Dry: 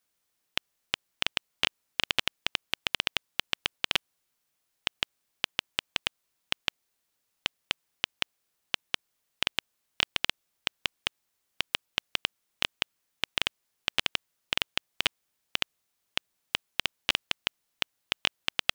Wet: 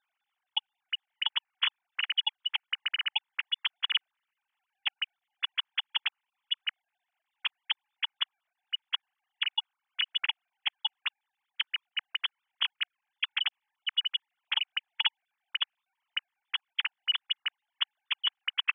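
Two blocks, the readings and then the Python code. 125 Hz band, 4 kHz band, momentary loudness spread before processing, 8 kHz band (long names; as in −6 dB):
below −40 dB, +1.5 dB, 7 LU, below −35 dB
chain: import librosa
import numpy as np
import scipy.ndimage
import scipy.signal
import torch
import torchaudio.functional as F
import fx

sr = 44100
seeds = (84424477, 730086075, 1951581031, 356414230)

y = fx.sine_speech(x, sr)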